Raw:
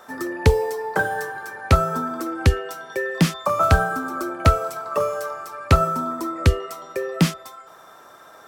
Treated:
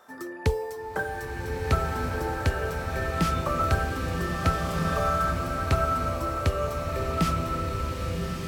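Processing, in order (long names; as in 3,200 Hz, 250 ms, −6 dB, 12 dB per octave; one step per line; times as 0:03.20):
slow-attack reverb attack 1,620 ms, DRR −1.5 dB
level −9 dB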